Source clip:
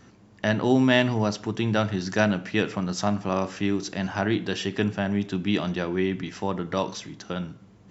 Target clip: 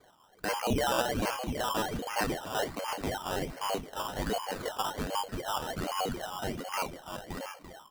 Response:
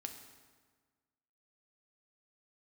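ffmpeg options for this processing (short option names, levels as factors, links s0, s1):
-af "aecho=1:1:2.2:0.33,lowpass=f=2800:t=q:w=0.5098,lowpass=f=2800:t=q:w=0.6013,lowpass=f=2800:t=q:w=0.9,lowpass=f=2800:t=q:w=2.563,afreqshift=-3300,aecho=1:1:72|340|688:0.133|0.355|0.266,acrusher=samples=16:mix=1:aa=0.000001:lfo=1:lforange=9.6:lforate=1.3,volume=0.398"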